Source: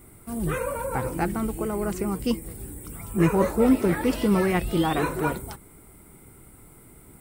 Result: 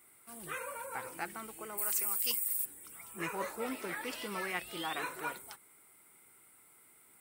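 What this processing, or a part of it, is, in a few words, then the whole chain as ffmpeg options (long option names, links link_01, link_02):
filter by subtraction: -filter_complex "[0:a]asplit=3[link_01][link_02][link_03];[link_01]afade=type=out:start_time=1.77:duration=0.02[link_04];[link_02]aemphasis=mode=production:type=riaa,afade=type=in:start_time=1.77:duration=0.02,afade=type=out:start_time=2.64:duration=0.02[link_05];[link_03]afade=type=in:start_time=2.64:duration=0.02[link_06];[link_04][link_05][link_06]amix=inputs=3:normalize=0,asplit=2[link_07][link_08];[link_08]lowpass=2100,volume=-1[link_09];[link_07][link_09]amix=inputs=2:normalize=0,volume=-7.5dB"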